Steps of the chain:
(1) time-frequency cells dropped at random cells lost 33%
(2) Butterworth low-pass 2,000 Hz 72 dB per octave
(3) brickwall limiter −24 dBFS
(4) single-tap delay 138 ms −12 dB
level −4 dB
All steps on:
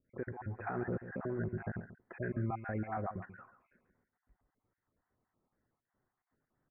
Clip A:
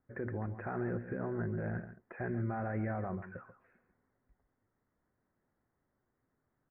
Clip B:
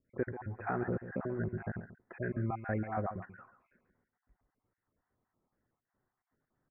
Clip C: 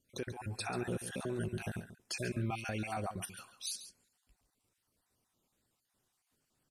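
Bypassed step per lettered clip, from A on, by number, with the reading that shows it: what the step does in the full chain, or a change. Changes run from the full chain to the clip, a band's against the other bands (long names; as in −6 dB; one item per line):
1, 1 kHz band −3.0 dB
3, change in crest factor +4.0 dB
2, 2 kHz band +2.5 dB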